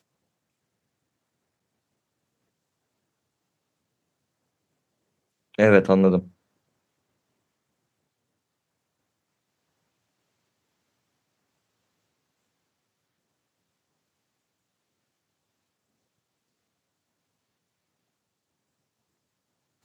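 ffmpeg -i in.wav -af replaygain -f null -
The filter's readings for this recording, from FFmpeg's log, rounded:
track_gain = +58.4 dB
track_peak = 0.618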